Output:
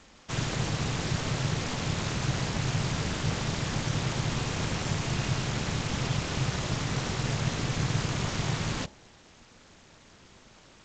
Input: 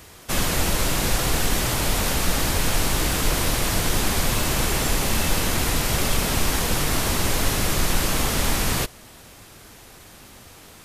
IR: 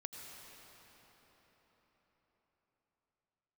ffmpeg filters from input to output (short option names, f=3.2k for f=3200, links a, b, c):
-af "bandreject=f=71.21:t=h:w=4,bandreject=f=142.42:t=h:w=4,bandreject=f=213.63:t=h:w=4,bandreject=f=284.84:t=h:w=4,bandreject=f=356.05:t=h:w=4,bandreject=f=427.26:t=h:w=4,bandreject=f=498.47:t=h:w=4,bandreject=f=569.68:t=h:w=4,bandreject=f=640.89:t=h:w=4,bandreject=f=712.1:t=h:w=4,bandreject=f=783.31:t=h:w=4,bandreject=f=854.52:t=h:w=4,aeval=exprs='val(0)*sin(2*PI*130*n/s)':c=same,volume=-5.5dB" -ar 16000 -c:a g722